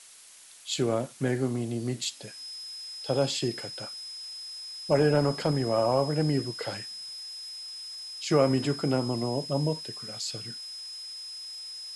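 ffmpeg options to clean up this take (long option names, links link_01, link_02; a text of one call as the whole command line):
ffmpeg -i in.wav -af "adeclick=threshold=4,bandreject=frequency=5100:width=30,afftdn=noise_reduction=30:noise_floor=-41" out.wav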